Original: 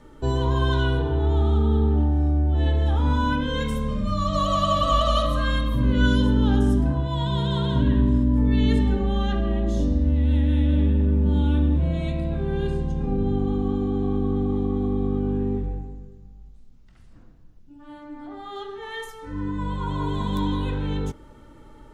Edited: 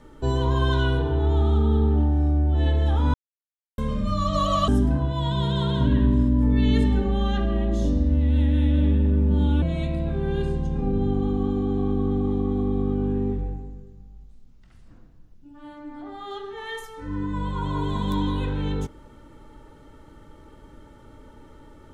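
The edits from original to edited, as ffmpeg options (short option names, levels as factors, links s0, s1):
-filter_complex "[0:a]asplit=5[s0][s1][s2][s3][s4];[s0]atrim=end=3.14,asetpts=PTS-STARTPTS,afade=t=out:st=3.136:d=0.004:c=hsin[s5];[s1]atrim=start=3.14:end=3.78,asetpts=PTS-STARTPTS,volume=0[s6];[s2]atrim=start=3.78:end=4.682,asetpts=PTS-STARTPTS,afade=t=in:d=0.004:c=hsin[s7];[s3]atrim=start=6.628:end=11.572[s8];[s4]atrim=start=11.868[s9];[s5][s6][s7]concat=n=3:v=0:a=1[s10];[s10][s8]acrossfade=d=0.004:c1=hsin:c2=hsin[s11];[s11][s9]acrossfade=d=0.004:c1=hsin:c2=hsin"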